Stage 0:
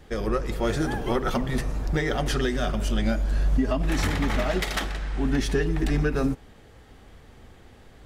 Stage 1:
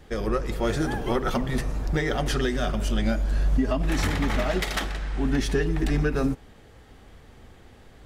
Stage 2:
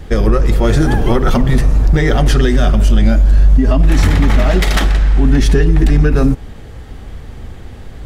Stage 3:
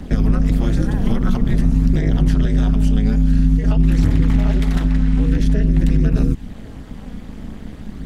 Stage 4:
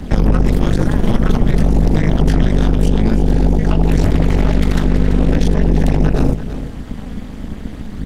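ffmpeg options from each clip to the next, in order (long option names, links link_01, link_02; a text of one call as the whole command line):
ffmpeg -i in.wav -af anull out.wav
ffmpeg -i in.wav -filter_complex "[0:a]lowshelf=frequency=180:gain=10,asplit=2[link_01][link_02];[link_02]alimiter=limit=-14.5dB:level=0:latency=1:release=34,volume=0dB[link_03];[link_01][link_03]amix=inputs=2:normalize=0,acompressor=threshold=-14dB:ratio=2,volume=6dB" out.wav
ffmpeg -i in.wav -filter_complex "[0:a]aphaser=in_gain=1:out_gain=1:delay=4.2:decay=0.36:speed=0.49:type=triangular,tremolo=f=210:d=0.974,acrossover=split=250|1600[link_01][link_02][link_03];[link_01]acompressor=threshold=-10dB:ratio=4[link_04];[link_02]acompressor=threshold=-31dB:ratio=4[link_05];[link_03]acompressor=threshold=-38dB:ratio=4[link_06];[link_04][link_05][link_06]amix=inputs=3:normalize=0" out.wav
ffmpeg -i in.wav -af "aeval=exprs='0.708*(cos(1*acos(clip(val(0)/0.708,-1,1)))-cos(1*PI/2))+0.112*(cos(5*acos(clip(val(0)/0.708,-1,1)))-cos(5*PI/2))+0.126*(cos(8*acos(clip(val(0)/0.708,-1,1)))-cos(8*PI/2))':channel_layout=same,aecho=1:1:337:0.251" out.wav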